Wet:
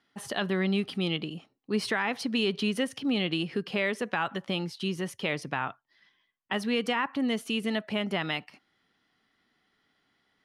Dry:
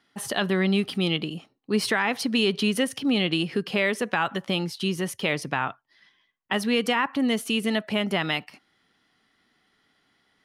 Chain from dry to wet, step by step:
high-shelf EQ 9,800 Hz −10.5 dB
level −4.5 dB

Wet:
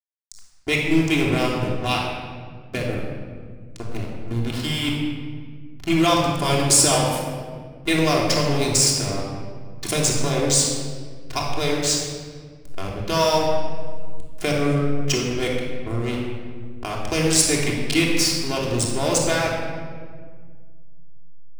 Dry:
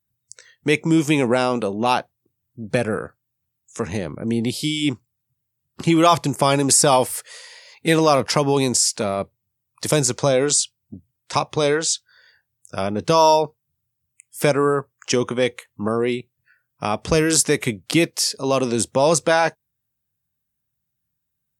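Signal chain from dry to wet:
high shelf with overshoot 1,900 Hz +6.5 dB, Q 1.5
slack as between gear wheels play −13.5 dBFS
rectangular room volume 2,200 cubic metres, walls mixed, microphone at 3.2 metres
level −8 dB

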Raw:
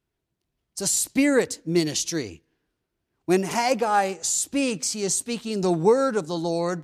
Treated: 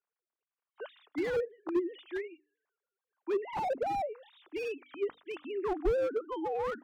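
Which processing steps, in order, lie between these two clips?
three sine waves on the formant tracks
notch filter 1,300 Hz, Q 20
treble cut that deepens with the level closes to 670 Hz, closed at −17 dBFS
parametric band 1,200 Hz +12 dB 1.5 octaves
mains-hum notches 50/100/150/200/250/300 Hz
slew-rate limiting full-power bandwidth 62 Hz
level −9 dB

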